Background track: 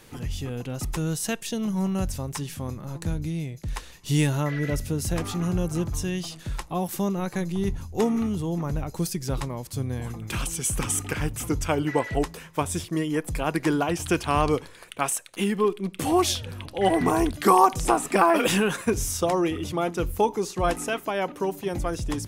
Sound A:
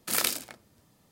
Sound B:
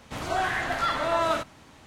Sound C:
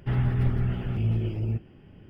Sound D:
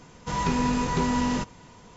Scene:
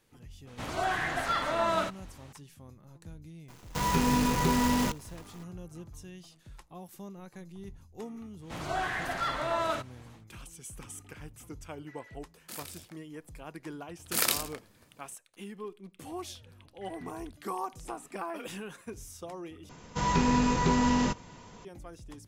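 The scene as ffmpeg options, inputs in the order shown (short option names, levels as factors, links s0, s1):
-filter_complex "[2:a]asplit=2[s0][s1];[4:a]asplit=2[s2][s3];[1:a]asplit=2[s4][s5];[0:a]volume=0.119[s6];[s2]acrusher=bits=6:dc=4:mix=0:aa=0.000001[s7];[s4]alimiter=limit=0.168:level=0:latency=1:release=206[s8];[s6]asplit=2[s9][s10];[s9]atrim=end=19.694[s11];[s3]atrim=end=1.96,asetpts=PTS-STARTPTS,volume=0.944[s12];[s10]atrim=start=21.646[s13];[s0]atrim=end=1.86,asetpts=PTS-STARTPTS,volume=0.668,afade=t=in:d=0.004:c=hsin,afade=t=out:st=1.856:d=0.004:c=hsin,adelay=470[s14];[s7]atrim=end=1.96,asetpts=PTS-STARTPTS,volume=0.841,afade=t=in:d=0.004:c=hsin,afade=t=out:st=1.956:d=0.004:c=hsin,adelay=3480[s15];[s1]atrim=end=1.86,asetpts=PTS-STARTPTS,volume=0.531,afade=t=in:d=0.1,afade=t=out:st=1.76:d=0.1,adelay=8390[s16];[s8]atrim=end=1.11,asetpts=PTS-STARTPTS,volume=0.282,afade=t=in:d=0.004:c=hsin,afade=t=out:st=1.106:d=0.004:c=hsin,adelay=12410[s17];[s5]atrim=end=1.11,asetpts=PTS-STARTPTS,volume=0.944,afade=t=in:d=0.004:c=hsin,afade=t=out:st=1.106:d=0.004:c=hsin,adelay=14040[s18];[s11][s12]acrossfade=d=0.004:c1=hsin:c2=hsin[s19];[s19][s13]acrossfade=d=0.004:c1=hsin:c2=hsin[s20];[s20][s14][s15][s16][s17][s18]amix=inputs=6:normalize=0"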